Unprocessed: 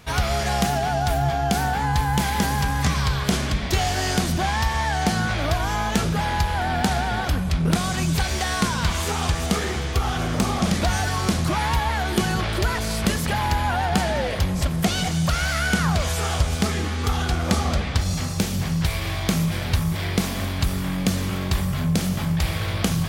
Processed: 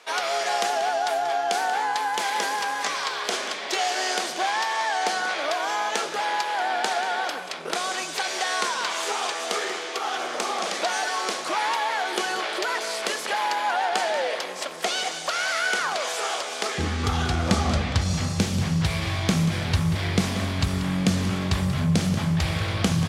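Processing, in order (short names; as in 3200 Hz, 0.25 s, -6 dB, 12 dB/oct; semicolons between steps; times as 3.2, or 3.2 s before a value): LPF 8500 Hz 12 dB/oct; crackle 36/s -49 dBFS; HPF 400 Hz 24 dB/oct, from 16.78 s 70 Hz; echo 0.185 s -13 dB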